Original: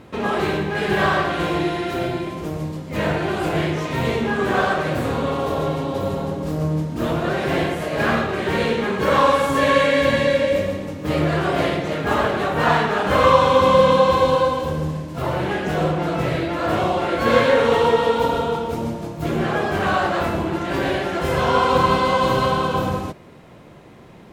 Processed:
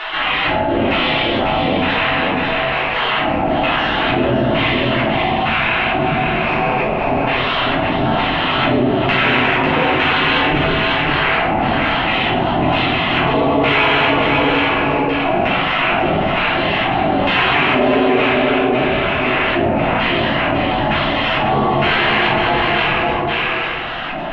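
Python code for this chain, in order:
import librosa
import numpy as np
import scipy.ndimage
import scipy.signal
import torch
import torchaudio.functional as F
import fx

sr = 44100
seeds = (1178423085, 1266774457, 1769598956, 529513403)

p1 = fx.pitch_keep_formants(x, sr, semitones=-10.5)
p2 = fx.filter_lfo_lowpass(p1, sr, shape='square', hz=1.1, low_hz=490.0, high_hz=2500.0, q=5.7)
p3 = fx.spec_gate(p2, sr, threshold_db=-15, keep='weak')
p4 = np.clip(p3, -10.0 ** (-23.5 / 20.0), 10.0 ** (-23.5 / 20.0))
p5 = p3 + (p4 * 10.0 ** (-10.5 / 20.0))
p6 = scipy.signal.sosfilt(scipy.signal.butter(2, 3600.0, 'lowpass', fs=sr, output='sos'), p5)
p7 = fx.low_shelf(p6, sr, hz=130.0, db=-10.5)
p8 = p7 + 10.0 ** (-5.5 / 20.0) * np.pad(p7, (int(547 * sr / 1000.0), 0))[:len(p7)]
p9 = fx.room_shoebox(p8, sr, seeds[0], volume_m3=170.0, walls='mixed', distance_m=3.2)
p10 = fx.env_flatten(p9, sr, amount_pct=70)
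y = p10 * 10.0 ** (-5.5 / 20.0)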